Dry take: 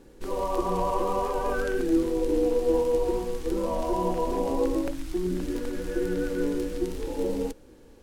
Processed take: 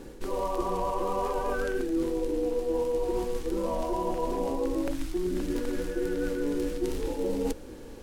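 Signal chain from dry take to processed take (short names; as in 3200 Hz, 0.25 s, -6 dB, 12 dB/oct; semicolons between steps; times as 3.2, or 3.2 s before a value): notches 60/120/180 Hz; reverse; compressor 6:1, threshold -35 dBFS, peak gain reduction 15.5 dB; reverse; gain +8.5 dB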